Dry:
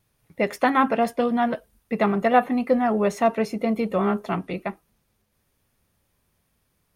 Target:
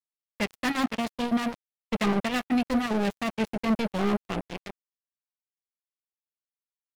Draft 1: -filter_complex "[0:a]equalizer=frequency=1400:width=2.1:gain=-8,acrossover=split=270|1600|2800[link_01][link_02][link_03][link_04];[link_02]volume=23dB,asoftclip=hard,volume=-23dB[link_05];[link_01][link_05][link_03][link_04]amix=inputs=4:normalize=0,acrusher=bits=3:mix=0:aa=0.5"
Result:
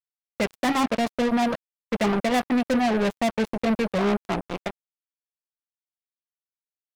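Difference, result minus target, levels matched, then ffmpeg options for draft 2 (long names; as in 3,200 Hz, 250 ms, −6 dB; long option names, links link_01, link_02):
gain into a clipping stage and back: distortion −5 dB
-filter_complex "[0:a]equalizer=frequency=1400:width=2.1:gain=-8,acrossover=split=270|1600|2800[link_01][link_02][link_03][link_04];[link_02]volume=32.5dB,asoftclip=hard,volume=-32.5dB[link_05];[link_01][link_05][link_03][link_04]amix=inputs=4:normalize=0,acrusher=bits=3:mix=0:aa=0.5"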